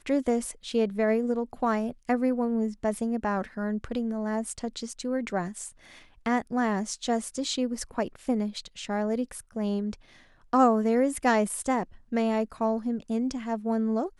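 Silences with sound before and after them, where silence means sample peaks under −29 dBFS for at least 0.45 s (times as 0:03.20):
0:05.67–0:06.26
0:09.93–0:10.53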